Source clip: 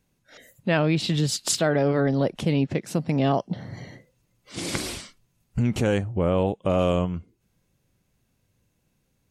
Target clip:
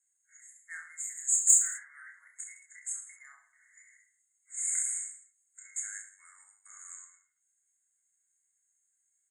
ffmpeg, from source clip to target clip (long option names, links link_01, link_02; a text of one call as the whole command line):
ffmpeg -i in.wav -af "asuperpass=centerf=3900:order=12:qfactor=0.54,asoftclip=type=tanh:threshold=-13dB,aecho=1:1:30|66|109.2|161|223.2:0.631|0.398|0.251|0.158|0.1,afftfilt=real='re*(1-between(b*sr/4096,2200,6500))':imag='im*(1-between(b*sr/4096,2200,6500))':win_size=4096:overlap=0.75,flanger=delay=8.5:depth=3:regen=55:speed=0.28:shape=triangular,highshelf=frequency=4300:gain=-10,aexciter=amount=13.8:drive=4.1:freq=3000,volume=-5.5dB" out.wav